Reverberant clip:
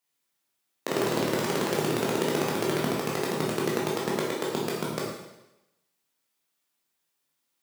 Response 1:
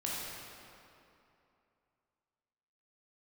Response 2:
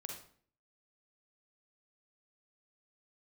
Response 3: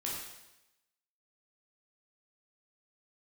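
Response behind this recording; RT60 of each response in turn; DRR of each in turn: 3; 2.8 s, 0.50 s, 0.95 s; -6.0 dB, 1.0 dB, -5.0 dB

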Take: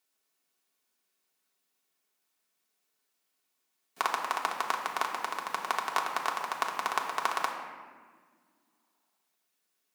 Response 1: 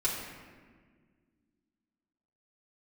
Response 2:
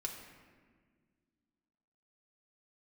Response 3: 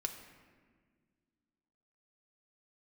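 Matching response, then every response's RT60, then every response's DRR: 2; 1.7 s, 1.7 s, 1.7 s; -8.5 dB, -0.5 dB, 3.5 dB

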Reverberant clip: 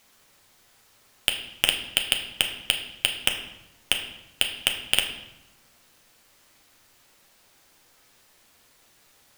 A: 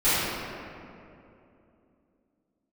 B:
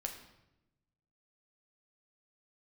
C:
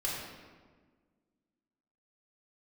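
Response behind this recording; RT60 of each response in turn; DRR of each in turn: B; 2.8 s, 0.90 s, 1.5 s; -19.0 dB, 2.5 dB, -6.0 dB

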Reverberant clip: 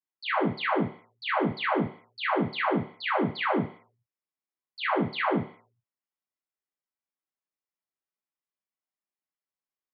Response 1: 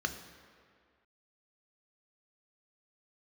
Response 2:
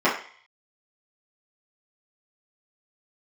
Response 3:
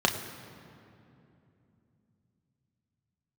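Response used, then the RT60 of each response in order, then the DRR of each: 2; 2.0 s, 0.45 s, 2.8 s; 6.0 dB, -10.5 dB, 2.5 dB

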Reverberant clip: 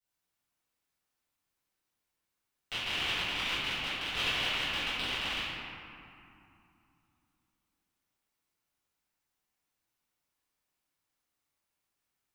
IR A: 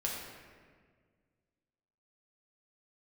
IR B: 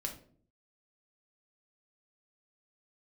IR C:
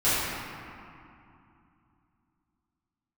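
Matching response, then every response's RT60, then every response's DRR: C; 1.7 s, 0.50 s, 2.7 s; -3.0 dB, 1.5 dB, -15.5 dB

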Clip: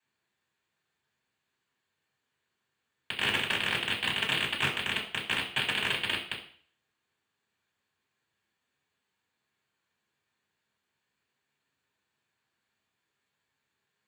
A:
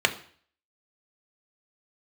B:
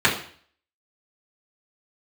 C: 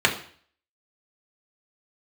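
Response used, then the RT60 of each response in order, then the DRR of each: B; 0.50 s, 0.50 s, 0.50 s; 5.0 dB, -8.0 dB, -1.0 dB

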